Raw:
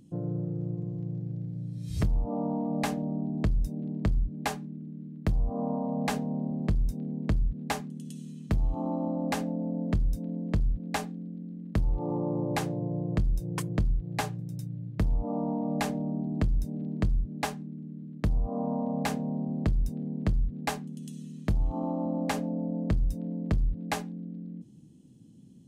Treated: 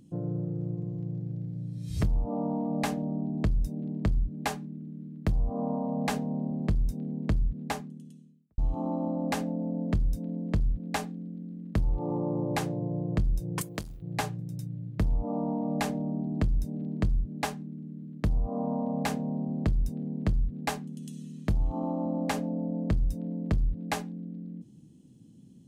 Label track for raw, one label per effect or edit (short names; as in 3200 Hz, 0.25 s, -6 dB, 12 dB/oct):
7.480000	8.580000	studio fade out
13.610000	14.020000	RIAA curve recording